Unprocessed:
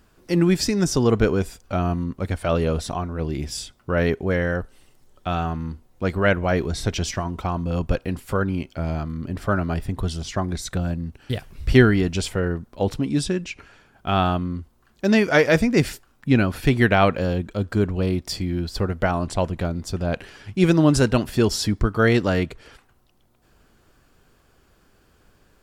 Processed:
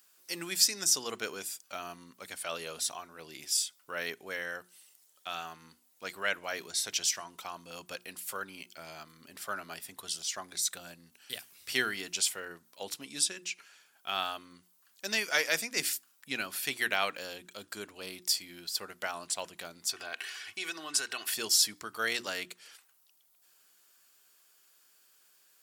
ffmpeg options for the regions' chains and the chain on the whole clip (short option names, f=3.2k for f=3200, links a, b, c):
-filter_complex "[0:a]asettb=1/sr,asplit=3[a][b][c];[a]atrim=end=19.894[d];[b]atrim=start=19.89:end=21.34,asetpts=PTS-STARTPTS,afade=t=in:d=0.004:c=qsin,afade=t=out:st=1.446:d=0.004:c=qsin,equalizer=f=1.7k:w=0.5:g=10,aecho=1:1:2.7:0.57,atrim=end_sample=63945,acompressor=threshold=-23dB:ratio=4:attack=3.2:release=140:knee=1:detection=peak[e];[c]atrim=start=21.336[f];[d][e]acrossfade=d=0.004:c1=hsin:c2=qsin[g];[g][f]acrossfade=d=0.004:c1=qsin:c2=hsin,highpass=130,aderivative,bandreject=f=60:t=h:w=6,bandreject=f=120:t=h:w=6,bandreject=f=180:t=h:w=6,bandreject=f=240:t=h:w=6,bandreject=f=300:t=h:w=6,bandreject=f=360:t=h:w=6,volume=4dB"